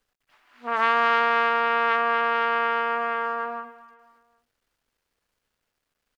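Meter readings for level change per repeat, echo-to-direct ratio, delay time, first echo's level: -7.5 dB, -17.0 dB, 256 ms, -18.0 dB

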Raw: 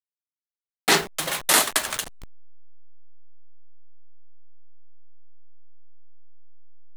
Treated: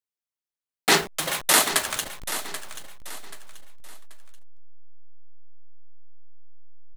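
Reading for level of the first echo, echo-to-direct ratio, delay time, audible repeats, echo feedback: -12.0 dB, -11.5 dB, 783 ms, 3, 33%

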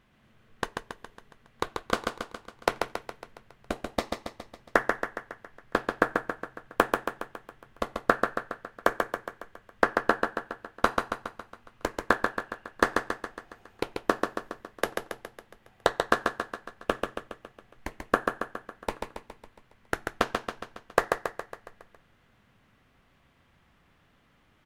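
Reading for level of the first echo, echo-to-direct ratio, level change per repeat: -4.5 dB, -3.0 dB, -5.0 dB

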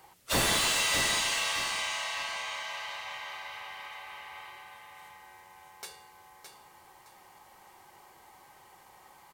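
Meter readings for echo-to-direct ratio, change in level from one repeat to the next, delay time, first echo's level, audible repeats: -7.0 dB, -11.5 dB, 615 ms, -7.5 dB, 3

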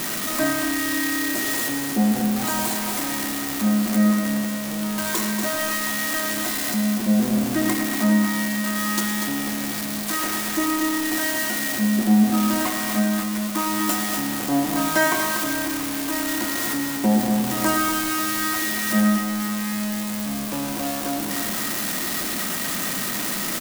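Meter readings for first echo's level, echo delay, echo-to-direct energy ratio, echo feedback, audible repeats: -11.5 dB, 109 ms, -5.0 dB, no regular repeats, 3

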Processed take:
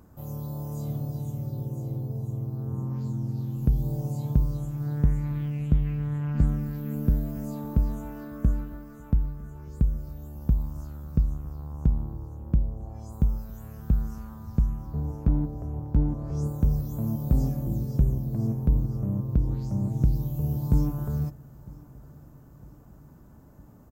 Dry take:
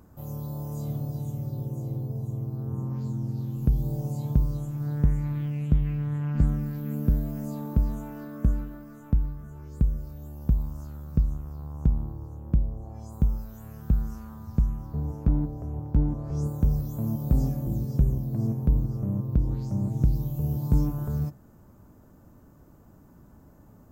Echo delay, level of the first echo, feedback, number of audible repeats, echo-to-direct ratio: 956 ms, -23.0 dB, 54%, 3, -21.5 dB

